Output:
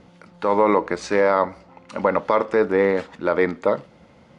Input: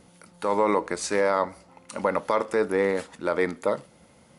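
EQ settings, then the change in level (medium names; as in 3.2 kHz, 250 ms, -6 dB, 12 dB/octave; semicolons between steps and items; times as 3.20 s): distance through air 110 m; treble shelf 9.2 kHz -11 dB; +5.5 dB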